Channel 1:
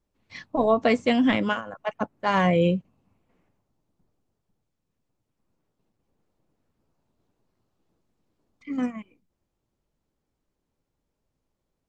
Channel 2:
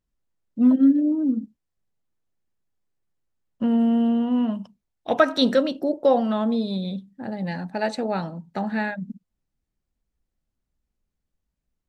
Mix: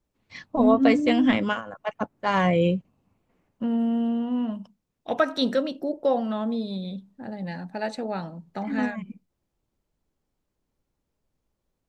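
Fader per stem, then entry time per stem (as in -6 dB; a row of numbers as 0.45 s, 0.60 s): -0.5 dB, -4.5 dB; 0.00 s, 0.00 s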